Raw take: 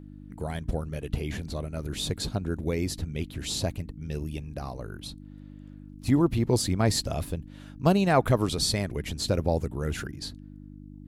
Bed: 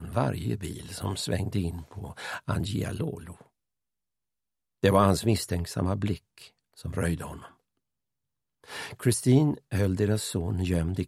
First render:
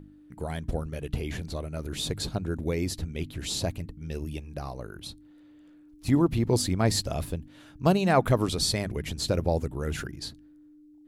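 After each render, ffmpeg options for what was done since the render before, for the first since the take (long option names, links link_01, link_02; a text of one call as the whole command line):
ffmpeg -i in.wav -af "bandreject=frequency=50:width_type=h:width=4,bandreject=frequency=100:width_type=h:width=4,bandreject=frequency=150:width_type=h:width=4,bandreject=frequency=200:width_type=h:width=4,bandreject=frequency=250:width_type=h:width=4" out.wav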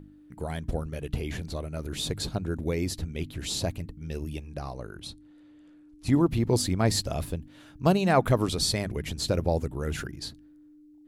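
ffmpeg -i in.wav -filter_complex "[0:a]asettb=1/sr,asplit=3[link_01][link_02][link_03];[link_01]atrim=end=4.484[link_04];[link_02]atrim=start=4.48:end=6.13,asetpts=PTS-STARTPTS,afade=type=in:duration=0.004:curve=qsin,afade=type=out:start_time=1.646:duration=0.004:curve=qsin,lowpass=frequency=11000:width=0.5412,lowpass=frequency=11000:width=1.3066[link_05];[link_03]atrim=start=6.126[link_06];[link_04][link_05]acrossfade=duration=0.004:curve1=hsin:curve2=qsin[link_07];[link_07][link_06]acrossfade=duration=0.004:curve1=qsin:curve2=hsin" out.wav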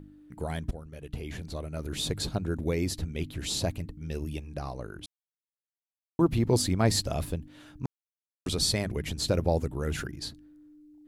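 ffmpeg -i in.wav -filter_complex "[0:a]asplit=6[link_01][link_02][link_03][link_04][link_05][link_06];[link_01]atrim=end=0.71,asetpts=PTS-STARTPTS,afade=type=out:start_time=0.706:duration=0.004:curve=hsin:silence=0.211349[link_07];[link_02]atrim=start=0.71:end=5.06,asetpts=PTS-STARTPTS,afade=type=in:duration=1.25:silence=0.211349,afade=type=out:start_time=4.346:duration=0.004:curve=hsin[link_08];[link_03]atrim=start=5.06:end=6.19,asetpts=PTS-STARTPTS,volume=0[link_09];[link_04]atrim=start=6.19:end=7.86,asetpts=PTS-STARTPTS,afade=type=in:duration=0.004:curve=hsin,afade=type=out:start_time=1.666:duration=0.004:curve=hsin[link_10];[link_05]atrim=start=7.86:end=8.46,asetpts=PTS-STARTPTS,volume=0[link_11];[link_06]atrim=start=8.46,asetpts=PTS-STARTPTS,afade=type=in:duration=0.004:curve=hsin[link_12];[link_07][link_08][link_09][link_10][link_11][link_12]concat=n=6:v=0:a=1" out.wav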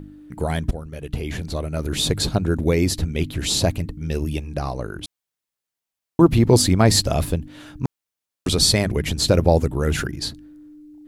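ffmpeg -i in.wav -af "volume=10dB,alimiter=limit=-1dB:level=0:latency=1" out.wav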